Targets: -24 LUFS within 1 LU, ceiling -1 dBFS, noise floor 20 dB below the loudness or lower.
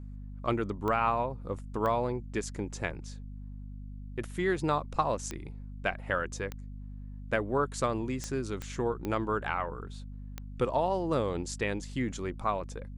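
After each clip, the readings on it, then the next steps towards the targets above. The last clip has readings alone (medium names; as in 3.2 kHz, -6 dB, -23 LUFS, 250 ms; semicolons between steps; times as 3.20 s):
clicks found 8; hum 50 Hz; highest harmonic 250 Hz; hum level -39 dBFS; loudness -32.5 LUFS; peak level -13.0 dBFS; loudness target -24.0 LUFS
-> de-click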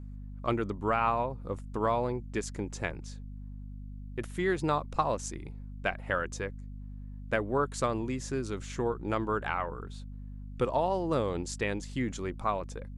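clicks found 0; hum 50 Hz; highest harmonic 250 Hz; hum level -39 dBFS
-> hum notches 50/100/150/200/250 Hz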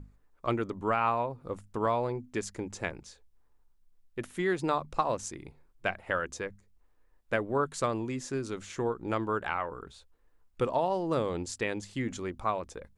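hum not found; loudness -32.5 LUFS; peak level -13.0 dBFS; loudness target -24.0 LUFS
-> trim +8.5 dB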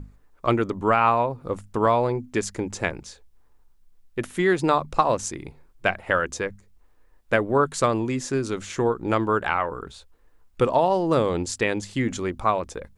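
loudness -24.0 LUFS; peak level -4.5 dBFS; noise floor -57 dBFS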